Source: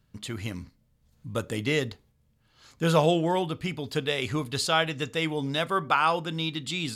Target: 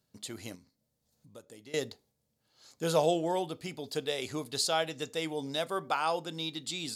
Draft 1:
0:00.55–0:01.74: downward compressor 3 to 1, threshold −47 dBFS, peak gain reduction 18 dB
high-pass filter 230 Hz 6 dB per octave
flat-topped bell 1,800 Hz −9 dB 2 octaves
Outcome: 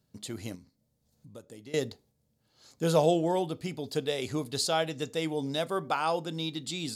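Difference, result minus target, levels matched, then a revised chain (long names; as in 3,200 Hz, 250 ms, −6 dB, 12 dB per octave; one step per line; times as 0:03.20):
250 Hz band +2.5 dB
0:00.55–0:01.74: downward compressor 3 to 1, threshold −47 dBFS, peak gain reduction 18 dB
high-pass filter 580 Hz 6 dB per octave
flat-topped bell 1,800 Hz −9 dB 2 octaves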